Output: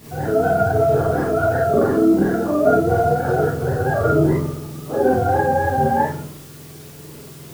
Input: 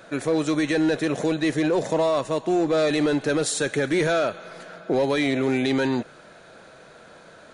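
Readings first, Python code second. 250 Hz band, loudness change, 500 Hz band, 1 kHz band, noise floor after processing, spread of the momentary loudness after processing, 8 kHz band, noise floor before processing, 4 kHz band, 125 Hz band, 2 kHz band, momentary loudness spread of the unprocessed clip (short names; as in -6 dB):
+2.5 dB, +5.0 dB, +5.5 dB, +11.5 dB, -39 dBFS, 22 LU, -6.0 dB, -48 dBFS, under -10 dB, +10.5 dB, +1.5 dB, 6 LU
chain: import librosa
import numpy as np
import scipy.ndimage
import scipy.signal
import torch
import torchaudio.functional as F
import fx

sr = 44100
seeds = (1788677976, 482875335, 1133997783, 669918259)

p1 = fx.octave_mirror(x, sr, pivot_hz=460.0)
p2 = fx.transient(p1, sr, attack_db=0, sustain_db=12)
p3 = fx.quant_dither(p2, sr, seeds[0], bits=6, dither='triangular')
p4 = p2 + F.gain(torch.from_numpy(p3), -11.0).numpy()
p5 = fx.rev_schroeder(p4, sr, rt60_s=0.38, comb_ms=27, drr_db=-6.0)
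y = F.gain(torch.from_numpy(p5), -4.0).numpy()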